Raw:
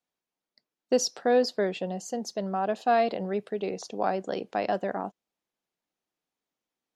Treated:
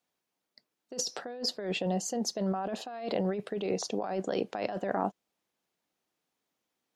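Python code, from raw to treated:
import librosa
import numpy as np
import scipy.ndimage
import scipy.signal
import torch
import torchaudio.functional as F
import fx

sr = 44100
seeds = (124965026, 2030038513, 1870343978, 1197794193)

y = scipy.signal.sosfilt(scipy.signal.butter(2, 53.0, 'highpass', fs=sr, output='sos'), x)
y = fx.over_compress(y, sr, threshold_db=-33.0, ratio=-1.0)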